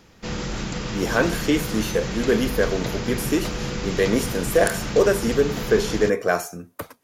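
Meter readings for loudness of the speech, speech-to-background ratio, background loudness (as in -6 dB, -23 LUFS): -22.5 LUFS, 6.5 dB, -29.0 LUFS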